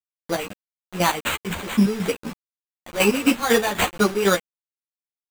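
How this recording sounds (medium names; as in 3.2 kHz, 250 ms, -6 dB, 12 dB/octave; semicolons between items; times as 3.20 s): aliases and images of a low sample rate 5.3 kHz, jitter 0%; chopped level 4 Hz, depth 65%, duty 40%; a quantiser's noise floor 6-bit, dither none; a shimmering, thickened sound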